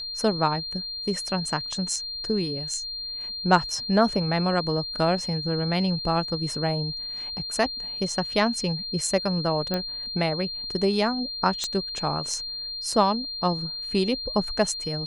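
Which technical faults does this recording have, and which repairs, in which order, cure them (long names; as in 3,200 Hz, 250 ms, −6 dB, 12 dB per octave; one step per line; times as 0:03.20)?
whistle 4,200 Hz −31 dBFS
0:09.74: click −13 dBFS
0:11.64: click −13 dBFS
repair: click removal
notch filter 4,200 Hz, Q 30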